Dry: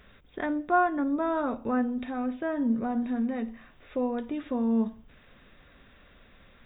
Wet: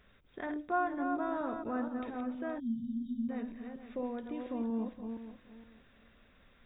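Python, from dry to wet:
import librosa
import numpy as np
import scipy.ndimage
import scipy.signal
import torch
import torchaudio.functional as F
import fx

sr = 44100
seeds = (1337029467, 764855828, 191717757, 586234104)

y = fx.reverse_delay_fb(x, sr, ms=235, feedback_pct=46, wet_db=-6.0)
y = fx.spec_erase(y, sr, start_s=2.59, length_s=0.7, low_hz=270.0, high_hz=3000.0)
y = y * librosa.db_to_amplitude(-8.5)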